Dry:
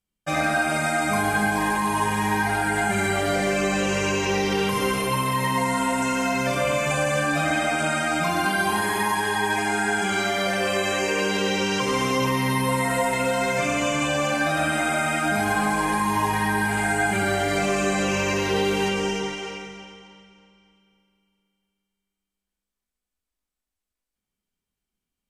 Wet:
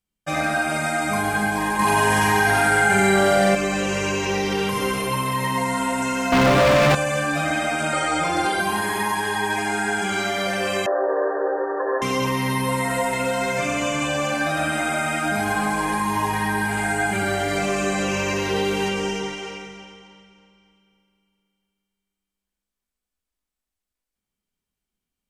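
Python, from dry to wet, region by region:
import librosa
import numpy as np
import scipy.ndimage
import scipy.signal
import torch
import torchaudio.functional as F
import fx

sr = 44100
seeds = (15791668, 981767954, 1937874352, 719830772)

y = fx.chain(x, sr, fx.room_flutter(wall_m=7.9, rt60_s=0.85),
    fx.env_flatten(amount_pct=70), at=(1.79, 3.55))
y = fx.chain(y, sr, fx.lowpass(hz=1300.0, slope=6),
    fx.leveller(passes=5), at=(6.32, 6.95))
y = fx.chain(y, sr, fx.lowpass(hz=10000.0, slope=24),
    fx.peak_eq(hz=540.0, db=10.0, octaves=0.33),
    fx.comb(ms=2.3, depth=0.87), at=(7.93, 8.6))
y = fx.chain(y, sr, fx.sample_sort(block=16),
    fx.brickwall_bandpass(low_hz=290.0, high_hz=1900.0),
    fx.peak_eq(hz=630.0, db=10.5, octaves=0.72), at=(10.86, 12.02))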